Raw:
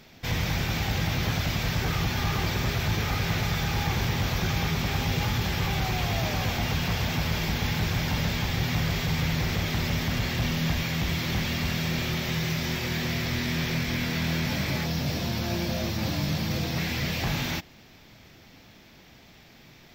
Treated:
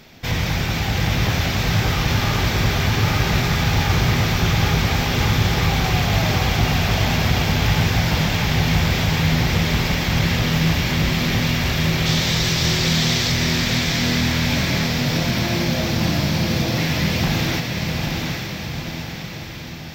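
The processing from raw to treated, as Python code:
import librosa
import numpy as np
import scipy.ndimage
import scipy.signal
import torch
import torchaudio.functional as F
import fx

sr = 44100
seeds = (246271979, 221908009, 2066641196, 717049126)

y = fx.band_shelf(x, sr, hz=5600.0, db=8.0, octaves=1.7, at=(12.06, 13.32))
y = fx.echo_diffused(y, sr, ms=823, feedback_pct=57, wet_db=-3.0)
y = fx.doppler_dist(y, sr, depth_ms=0.13)
y = y * librosa.db_to_amplitude(6.0)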